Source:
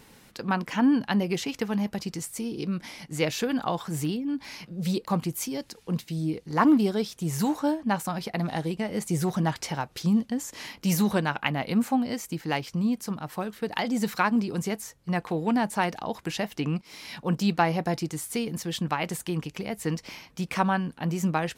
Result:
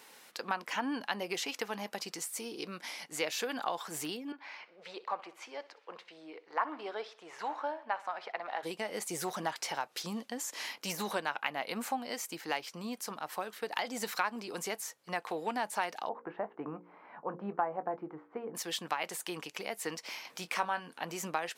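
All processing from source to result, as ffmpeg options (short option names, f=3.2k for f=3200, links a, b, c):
-filter_complex "[0:a]asettb=1/sr,asplit=3[a][b][c];[a]atrim=end=4.324[d];[b]atrim=start=4.32:end=8.63,asetpts=PTS-STARTPTS,afade=t=in:d=0.004:c=qsin,afade=t=out:st=4.306:d=0.004:c=qsin,highpass=570,lowpass=2.1k,aecho=1:1:62|124|186|248:0.126|0.0567|0.0255|0.0115,atrim=end_sample=190071[e];[c]atrim=start=8.626[f];[d][e]acrossfade=d=0.004:c1=hsin:c2=qsin[g];[g][f]acrossfade=d=0.004:c1=qsin:c2=hsin,asettb=1/sr,asplit=3[h][i][j];[h]atrim=end=16.094[k];[i]atrim=start=16.09:end=18.55,asetpts=PTS-STARTPTS,afade=t=in:d=0.004:c=qsin,afade=t=out:st=2.456:d=0.004:c=qsin,lowpass=f=1.3k:w=0.5412,lowpass=f=1.3k:w=1.3066,asplit=2[l][m];[m]adelay=20,volume=-13dB[n];[l][n]amix=inputs=2:normalize=0,atrim=end_sample=108486,bandreject=f=59.06:t=h:w=4,bandreject=f=118.12:t=h:w=4,bandreject=f=177.18:t=h:w=4,bandreject=f=236.24:t=h:w=4,bandreject=f=295.3:t=h:w=4,bandreject=f=354.36:t=h:w=4,bandreject=f=413.42:t=h:w=4,bandreject=f=472.48:t=h:w=4,bandreject=f=531.54:t=h:w=4[o];[j]atrim=start=18.546[p];[k][o]acrossfade=d=0.004:c1=hsin:c2=qsin[q];[q][p]acrossfade=d=0.004:c1=qsin:c2=hsin,asettb=1/sr,asplit=3[r][s][t];[r]atrim=end=20.254[u];[s]atrim=start=20.25:end=21.04,asetpts=PTS-STARTPTS,afade=t=in:d=0.004:c=qsin,afade=t=out:st=0.786:d=0.004:c=qsin,acompressor=mode=upward:threshold=-38dB:ratio=2.5:attack=3.2:release=140:knee=2.83:detection=peak,asplit=2[v][w];[w]adelay=23,volume=-12dB[x];[v][x]amix=inputs=2:normalize=0,atrim=end_sample=34839[y];[t]atrim=start=21.036[z];[u][y]acrossfade=d=0.004:c1=hsin:c2=qsin[aa];[aa][z]acrossfade=d=0.004:c1=qsin:c2=hsin,deesser=0.6,highpass=540,acompressor=threshold=-33dB:ratio=2"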